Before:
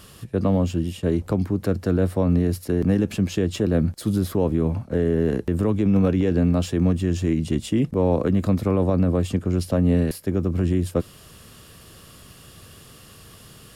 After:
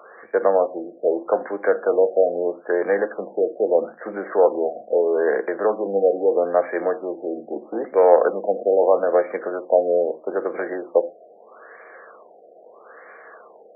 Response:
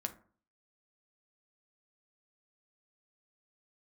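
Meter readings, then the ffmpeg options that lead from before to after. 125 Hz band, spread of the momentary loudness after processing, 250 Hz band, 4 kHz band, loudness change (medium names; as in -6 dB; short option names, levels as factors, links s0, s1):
under -25 dB, 10 LU, -10.5 dB, under -40 dB, +1.0 dB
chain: -filter_complex "[0:a]acontrast=67,highpass=f=450:w=0.5412,highpass=f=450:w=1.3066,equalizer=f=500:t=q:w=4:g=6,equalizer=f=730:t=q:w=4:g=7,equalizer=f=1600:t=q:w=4:g=8,equalizer=f=2800:t=q:w=4:g=10,lowpass=f=3100:w=0.5412,lowpass=f=3100:w=1.3066,asplit=2[s0][s1];[1:a]atrim=start_sample=2205,atrim=end_sample=6174[s2];[s1][s2]afir=irnorm=-1:irlink=0,volume=1.78[s3];[s0][s3]amix=inputs=2:normalize=0,afftfilt=real='re*lt(b*sr/1024,750*pow(2400/750,0.5+0.5*sin(2*PI*0.78*pts/sr)))':imag='im*lt(b*sr/1024,750*pow(2400/750,0.5+0.5*sin(2*PI*0.78*pts/sr)))':win_size=1024:overlap=0.75,volume=0.376"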